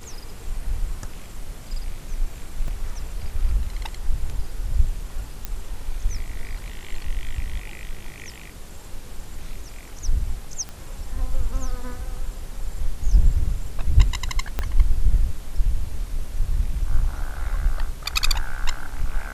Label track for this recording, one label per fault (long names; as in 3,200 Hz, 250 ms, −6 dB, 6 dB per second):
2.680000	2.680000	drop-out 2.4 ms
5.450000	5.450000	click −13 dBFS
10.690000	10.690000	click −20 dBFS
14.590000	14.590000	click −10 dBFS